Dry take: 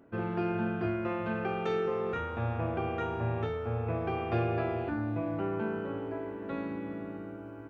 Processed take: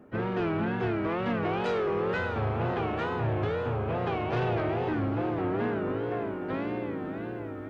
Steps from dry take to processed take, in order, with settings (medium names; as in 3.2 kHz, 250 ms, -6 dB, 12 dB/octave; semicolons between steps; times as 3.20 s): harmony voices +4 st -10 dB; in parallel at -10 dB: sine folder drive 9 dB, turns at -18.5 dBFS; on the sum: echo that smears into a reverb 599 ms, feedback 49%, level -10 dB; wow and flutter 140 cents; trim -3 dB